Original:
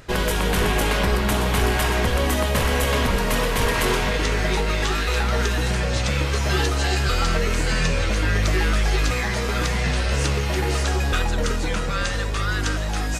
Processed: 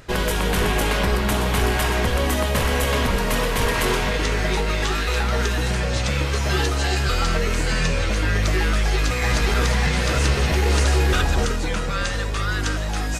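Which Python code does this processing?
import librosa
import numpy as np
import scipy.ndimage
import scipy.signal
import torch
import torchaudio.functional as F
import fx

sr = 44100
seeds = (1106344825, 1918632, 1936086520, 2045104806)

y = fx.reverse_delay(x, sr, ms=326, wet_db=-1, at=(8.89, 11.45))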